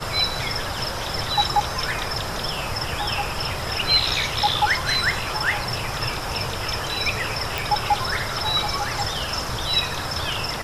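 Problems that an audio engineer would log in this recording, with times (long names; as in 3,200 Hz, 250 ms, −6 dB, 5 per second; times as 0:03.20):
0:07.58: click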